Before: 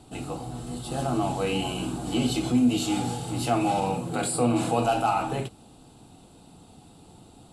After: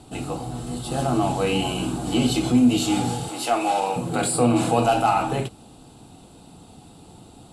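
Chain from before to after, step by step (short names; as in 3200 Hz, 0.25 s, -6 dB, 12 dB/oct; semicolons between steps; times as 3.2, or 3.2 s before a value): 3.28–3.96 HPF 440 Hz 12 dB/oct; added harmonics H 4 -33 dB, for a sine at -11.5 dBFS; gain +4.5 dB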